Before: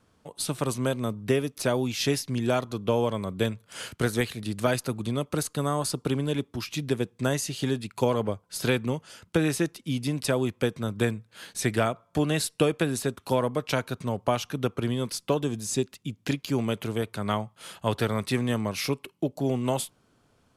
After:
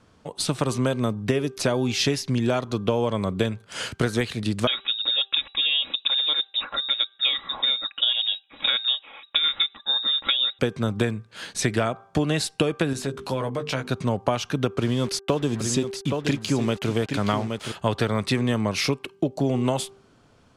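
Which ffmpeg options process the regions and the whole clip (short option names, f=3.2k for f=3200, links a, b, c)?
-filter_complex "[0:a]asettb=1/sr,asplit=3[a][b][c];[a]atrim=end=4.674[d];[b]atrim=start=4.67:end=10.59,asetpts=PTS-STARTPTS,afade=t=in:d=0.004:c=qsin,afade=t=out:st=5.916:d=0.004:c=qsin,tremolo=f=7.3:d=0.34,aecho=1:1:3.6:0.5,atrim=end_sample=261072,lowpass=f=3.3k:t=q:w=0.5098,lowpass=f=3.3k:t=q:w=0.6013,lowpass=f=3.3k:t=q:w=0.9,lowpass=f=3.3k:t=q:w=2.563,afreqshift=-3900[e];[c]atrim=start=10.586[f];[d][e]acrossfade=d=0.004:c1=hsin:c2=qsin[g];[g][f]acrossfade=d=0.004:c1=qsin:c2=hsin,asettb=1/sr,asplit=3[h][i][j];[h]atrim=end=12.934[k];[i]atrim=start=12.93:end=13.9,asetpts=PTS-STARTPTS,afade=t=in:d=0.004:c=qsin,afade=t=out:st=0.966:d=0.004:c=qsin,bandreject=f=50:t=h:w=6,bandreject=f=100:t=h:w=6,bandreject=f=150:t=h:w=6,bandreject=f=200:t=h:w=6,bandreject=f=250:t=h:w=6,bandreject=f=300:t=h:w=6,bandreject=f=350:t=h:w=6,bandreject=f=400:t=h:w=6,bandreject=f=450:t=h:w=6,asplit=2[l][m];[m]adelay=15,volume=-5dB[n];[l][n]amix=inputs=2:normalize=0,atrim=end_sample=42777,acompressor=threshold=-37dB:ratio=2:attack=3.2:release=140:knee=1:detection=peak[o];[j]atrim=start=13.896[p];[k][o]acrossfade=d=0.004:c1=hsin:c2=qsin[q];[q][p]acrossfade=d=0.004:c1=qsin:c2=hsin,asettb=1/sr,asplit=3[r][s][t];[r]atrim=end=14.764[u];[s]atrim=start=14.76:end=17.72,asetpts=PTS-STARTPTS,afade=t=in:d=0.004:c=qsin,afade=t=out:st=2.956:d=0.004:c=qsin,acrusher=bits=6:mix=0:aa=0.5,aecho=1:1:821:0.355,atrim=end_sample=130536[v];[t]atrim=start=17.716[w];[u][v]acrossfade=d=0.004:c1=hsin:c2=qsin[x];[x][w]acrossfade=d=0.004:c1=qsin:c2=hsin,bandreject=f=393.1:t=h:w=4,bandreject=f=786.2:t=h:w=4,bandreject=f=1.1793k:t=h:w=4,bandreject=f=1.5724k:t=h:w=4,acompressor=threshold=-26dB:ratio=6,lowpass=7.5k,volume=7.5dB"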